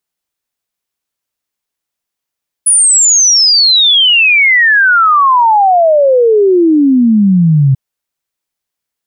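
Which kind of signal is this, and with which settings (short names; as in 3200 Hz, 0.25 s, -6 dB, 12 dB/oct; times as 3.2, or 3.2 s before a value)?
log sweep 10000 Hz -> 130 Hz 5.09 s -4.5 dBFS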